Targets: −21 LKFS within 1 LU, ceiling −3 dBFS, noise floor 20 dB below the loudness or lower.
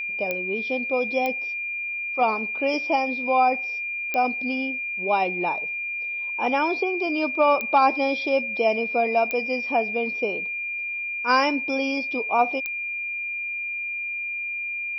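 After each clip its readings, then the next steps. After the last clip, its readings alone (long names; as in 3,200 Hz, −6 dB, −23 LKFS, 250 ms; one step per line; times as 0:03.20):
number of clicks 6; interfering tone 2,400 Hz; level of the tone −27 dBFS; integrated loudness −24.0 LKFS; sample peak −8.0 dBFS; target loudness −21.0 LKFS
→ click removal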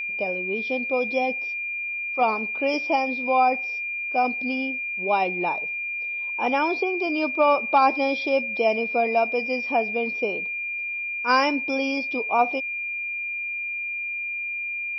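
number of clicks 0; interfering tone 2,400 Hz; level of the tone −27 dBFS
→ notch filter 2,400 Hz, Q 30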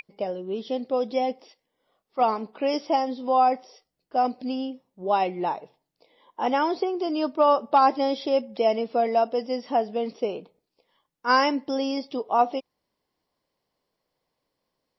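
interfering tone none found; integrated loudness −25.0 LKFS; sample peak −8.5 dBFS; target loudness −21.0 LKFS
→ level +4 dB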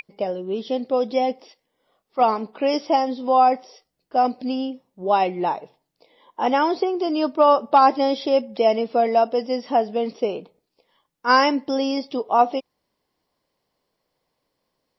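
integrated loudness −21.0 LKFS; sample peak −4.5 dBFS; background noise floor −77 dBFS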